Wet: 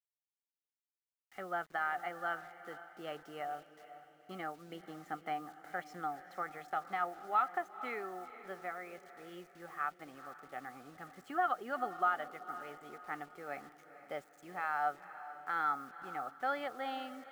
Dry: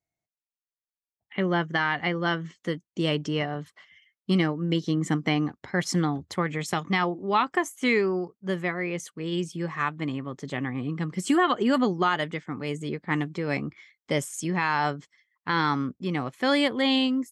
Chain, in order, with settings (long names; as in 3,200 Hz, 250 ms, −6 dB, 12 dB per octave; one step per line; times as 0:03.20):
pair of resonant band-passes 1,000 Hz, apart 0.78 octaves
bit-depth reduction 10 bits, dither none
feedback delay with all-pass diffusion 476 ms, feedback 44%, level −13.5 dB
level −2.5 dB